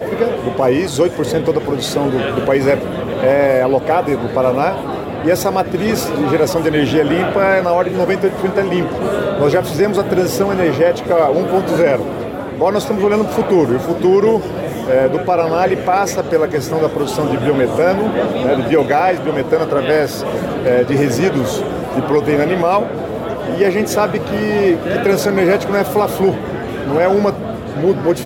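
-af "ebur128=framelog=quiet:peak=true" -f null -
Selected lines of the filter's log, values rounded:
Integrated loudness:
  I:         -15.5 LUFS
  Threshold: -25.5 LUFS
Loudness range:
  LRA:         1.2 LU
  Threshold: -35.4 LUFS
  LRA low:   -16.0 LUFS
  LRA high:  -14.8 LUFS
True peak:
  Peak:       -2.8 dBFS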